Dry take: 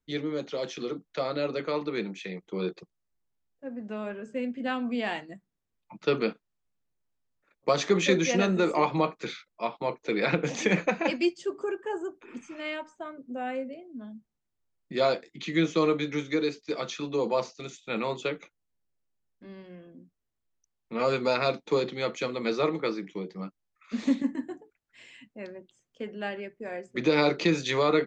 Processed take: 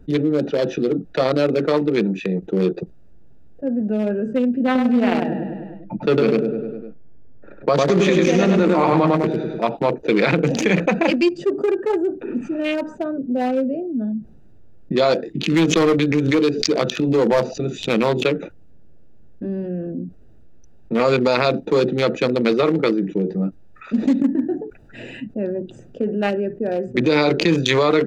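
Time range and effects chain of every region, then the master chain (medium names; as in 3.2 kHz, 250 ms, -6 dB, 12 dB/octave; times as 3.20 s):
4.65–9.65 s: treble shelf 2.6 kHz -7 dB + feedback delay 101 ms, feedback 47%, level -3.5 dB
15.43–18.26 s: hard clipper -21.5 dBFS + swell ahead of each attack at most 90 dB/s
whole clip: local Wiener filter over 41 samples; loudness maximiser +18 dB; level flattener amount 50%; trim -8 dB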